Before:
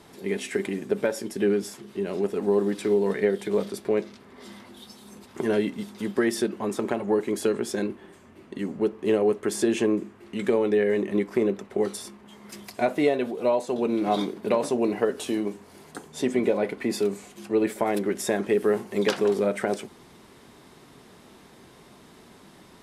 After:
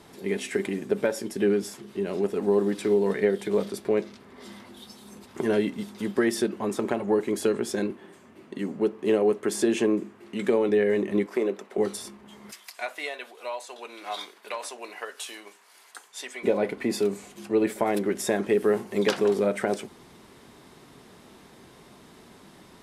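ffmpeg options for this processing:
ffmpeg -i in.wav -filter_complex "[0:a]asettb=1/sr,asplit=3[link_01][link_02][link_03];[link_01]atrim=end=7.904[link_04];[link_02]atrim=start=7.9:end=10.69,asetpts=PTS-STARTPTS,afade=type=in:duration=0.004:curve=qsin,afade=type=out:start_time=2.786:duration=0.004:curve=qsin,highpass=130[link_05];[link_03]atrim=start=10.686[link_06];[link_04][link_05]acrossfade=duration=0.004:curve1=hsin:curve2=qsin[link_07];[link_07][link_06]acrossfade=duration=0.004:curve1=qsin:curve2=hsin,asettb=1/sr,asplit=3[link_08][link_09][link_10];[link_08]atrim=end=11.264[link_11];[link_09]atrim=start=11.26:end=11.78,asetpts=PTS-STARTPTS,afade=type=in:duration=0.004:curve=qsin,afade=type=out:start_time=0.516:duration=0.004:curve=qsin,highpass=340[link_12];[link_10]atrim=start=11.776[link_13];[link_11][link_12]acrossfade=duration=0.004:curve1=hsin:curve2=qsin[link_14];[link_14][link_13]acrossfade=duration=0.004:curve1=qsin:curve2=hsin,asplit=3[link_15][link_16][link_17];[link_15]afade=type=out:start_time=12.51:duration=0.02[link_18];[link_16]highpass=1200,afade=type=in:start_time=12.51:duration=0.02,afade=type=out:start_time=16.43:duration=0.02[link_19];[link_17]afade=type=in:start_time=16.43:duration=0.02[link_20];[link_18][link_19][link_20]amix=inputs=3:normalize=0" out.wav

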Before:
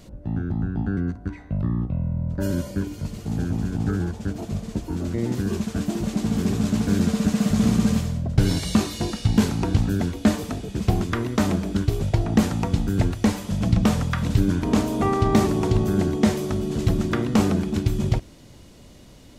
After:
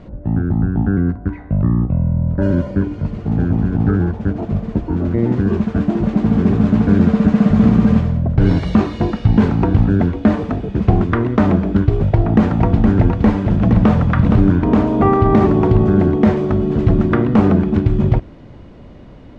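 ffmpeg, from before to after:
ffmpeg -i in.wav -filter_complex "[0:a]asettb=1/sr,asplit=3[link_01][link_02][link_03];[link_01]atrim=end=12.074[link_04];[link_02]atrim=start=12.07:end=14.51,asetpts=PTS-STARTPTS,afade=type=in:duration=0.004:curve=qsin,afade=type=out:start_time=2.436:duration=0.004:curve=qsin,aecho=1:1:467:0.447,atrim=end_sample=107604[link_05];[link_03]atrim=start=14.506[link_06];[link_04][link_05]acrossfade=duration=0.004:curve1=hsin:curve2=qsin[link_07];[link_07][link_06]acrossfade=duration=0.004:curve1=qsin:curve2=hsin,lowpass=1700,alimiter=level_in=10dB:limit=-1dB:release=50:level=0:latency=1,volume=-1dB" out.wav

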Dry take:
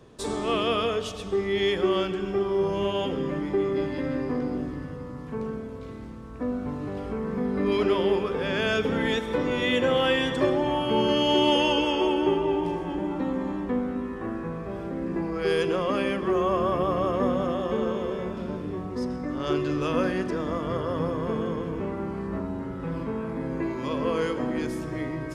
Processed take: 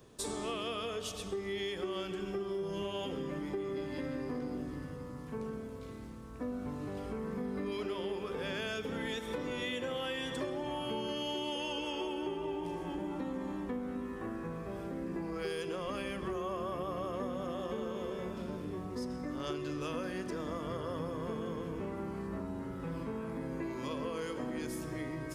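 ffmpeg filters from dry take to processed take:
ffmpeg -i in.wav -filter_complex "[0:a]asettb=1/sr,asplit=3[link_01][link_02][link_03];[link_01]atrim=end=2.344[link_04];[link_02]atrim=start=2.34:end=2.82,asetpts=PTS-STARTPTS,afade=type=in:duration=0.004:curve=qsin,afade=type=out:start_time=0.476:duration=0.004:curve=qsin,aecho=1:1:5.7:0.49,atrim=end_sample=21168[link_05];[link_03]atrim=start=2.816[link_06];[link_04][link_05]acrossfade=duration=0.004:curve1=hsin:curve2=qsin[link_07];[link_07][link_06]acrossfade=duration=0.004:curve1=qsin:curve2=hsin,asplit=3[link_08][link_09][link_10];[link_08]afade=type=out:start_time=15.83:duration=0.02[link_11];[link_09]asubboost=boost=2.5:cutoff=140,afade=type=in:start_time=15.83:duration=0.02,afade=type=out:start_time=16.36:duration=0.02[link_12];[link_10]afade=type=in:start_time=16.36:duration=0.02[link_13];[link_11][link_12][link_13]amix=inputs=3:normalize=0,aemphasis=mode=production:type=50kf,acompressor=threshold=-27dB:ratio=6,volume=-7dB" out.wav

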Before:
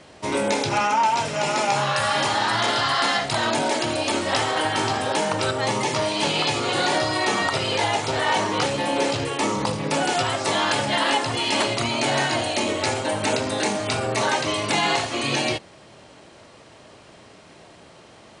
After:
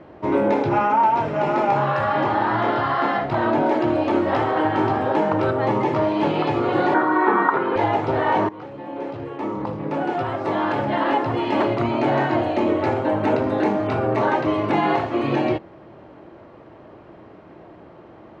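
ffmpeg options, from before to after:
ffmpeg -i in.wav -filter_complex "[0:a]asettb=1/sr,asplit=3[link_01][link_02][link_03];[link_01]atrim=end=2.044[link_04];[link_02]atrim=start=2.04:end=3.66,asetpts=PTS-STARTPTS,afade=type=in:duration=0.004:curve=qsin,afade=type=out:start_time=1.616:duration=0.004:curve=qsin,highshelf=frequency=7900:gain=-9.5[link_05];[link_03]atrim=start=3.656[link_06];[link_04][link_05]acrossfade=duration=0.004:curve1=hsin:curve2=qsin[link_07];[link_07][link_06]acrossfade=duration=0.004:curve1=qsin:curve2=hsin,asettb=1/sr,asplit=3[link_08][link_09][link_10];[link_08]atrim=end=6.944[link_11];[link_09]atrim=start=6.94:end=7.76,asetpts=PTS-STARTPTS,afade=type=in:duration=0.004:curve=qsin,afade=type=out:start_time=0.816:duration=0.004:curve=qsin,highpass=frequency=190:width=0.5412,highpass=frequency=190:width=1.3066,equalizer=frequency=420:width_type=q:width=4:gain=3,equalizer=frequency=620:width_type=q:width=4:gain=-9,equalizer=frequency=1000:width_type=q:width=4:gain=9,equalizer=frequency=1500:width_type=q:width=4:gain=10,equalizer=frequency=2800:width_type=q:width=4:gain=-9,lowpass=frequency=3300:width=0.5412,lowpass=frequency=3300:width=1.3066[link_12];[link_10]atrim=start=7.756[link_13];[link_11][link_12]acrossfade=duration=0.004:curve1=hsin:curve2=qsin[link_14];[link_14][link_13]acrossfade=duration=0.004:curve1=qsin:curve2=hsin,asplit=2[link_15][link_16];[link_15]atrim=end=8.49,asetpts=PTS-STARTPTS,afade=type=out:start_time=8.486:duration=0.004:curve=hsin:silence=0.105925[link_17];[link_16]atrim=start=8.49,asetpts=PTS-STARTPTS,afade=type=in:duration=2.9:silence=0.105925[link_18];[link_17][link_18]concat=n=2:v=0:a=1,lowpass=1300,equalizer=frequency=330:width=4.9:gain=7.5,volume=3.5dB" out.wav

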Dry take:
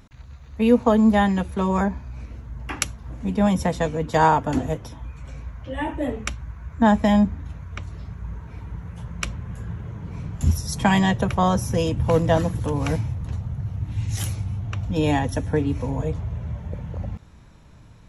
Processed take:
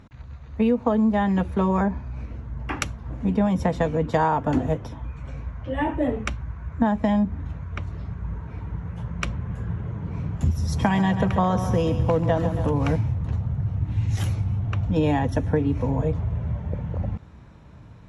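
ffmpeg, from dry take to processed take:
ffmpeg -i in.wav -filter_complex "[0:a]asettb=1/sr,asplit=3[link_01][link_02][link_03];[link_01]atrim=end=10.274[link_04];[link_02]atrim=start=10.27:end=12.71,asetpts=PTS-STARTPTS,afade=type=in:duration=0.004:curve=qsin,afade=type=out:start_time=2.436:duration=0.004:curve=qsin,aecho=1:1:137|274|411|548|685|822:0.251|0.133|0.0706|0.0374|0.0198|0.0105,atrim=end_sample=107604[link_05];[link_03]atrim=start=12.706[link_06];[link_04][link_05]acrossfade=duration=0.004:curve1=hsin:curve2=qsin[link_07];[link_07][link_06]acrossfade=duration=0.004:curve1=qsin:curve2=hsin,lowpass=frequency=1900:poles=1,acompressor=threshold=-20dB:ratio=12,highpass=50,volume=3.5dB" out.wav

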